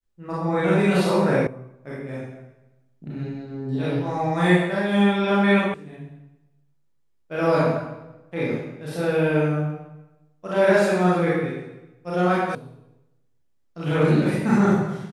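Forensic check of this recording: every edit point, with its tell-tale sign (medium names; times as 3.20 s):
1.47 s: sound stops dead
5.74 s: sound stops dead
12.55 s: sound stops dead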